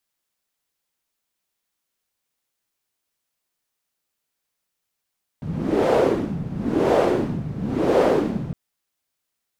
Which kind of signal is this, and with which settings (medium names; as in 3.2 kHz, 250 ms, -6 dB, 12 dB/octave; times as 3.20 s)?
wind-like swept noise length 3.11 s, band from 150 Hz, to 520 Hz, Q 2.7, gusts 3, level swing 12 dB